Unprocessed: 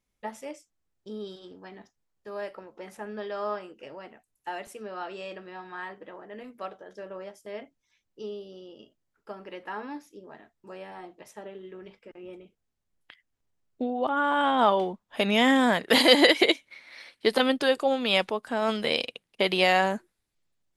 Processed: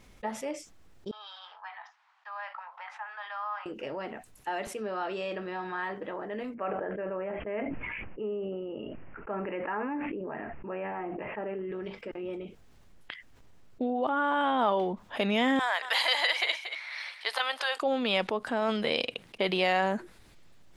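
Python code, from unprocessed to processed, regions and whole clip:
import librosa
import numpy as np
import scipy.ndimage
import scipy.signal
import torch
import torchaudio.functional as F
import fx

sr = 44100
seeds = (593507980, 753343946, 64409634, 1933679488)

y = fx.chain(x, sr, fx.steep_highpass(hz=830.0, slope=48),
    fx.spacing_loss(db_at_10k=33), at=(1.11, 3.66))
y = fx.chain(y, sr, fx.steep_lowpass(hz=2800.0, slope=96),
    fx.sustainer(db_per_s=29.0), at=(6.54, 11.72))
y = fx.chain(y, sr, fx.highpass(hz=790.0, slope=24),
    fx.echo_single(ms=232, db=-20.0), at=(15.59, 17.82))
y = fx.high_shelf(y, sr, hz=6200.0, db=-11.5)
y = fx.env_flatten(y, sr, amount_pct=50)
y = y * 10.0 ** (-5.5 / 20.0)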